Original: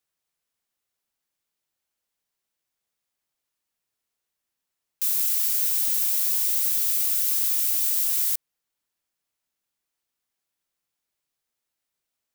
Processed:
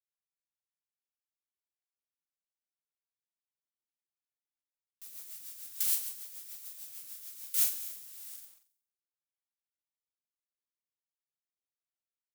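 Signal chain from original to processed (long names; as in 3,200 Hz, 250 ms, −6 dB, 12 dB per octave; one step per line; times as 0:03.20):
noise gate with hold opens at −10 dBFS
flutter between parallel walls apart 7.8 metres, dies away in 0.77 s
in parallel at −5.5 dB: log-companded quantiser 4 bits
on the sum: rotating-speaker cabinet horn 6.7 Hz, later 0.85 Hz, at 0:07.29
level −4 dB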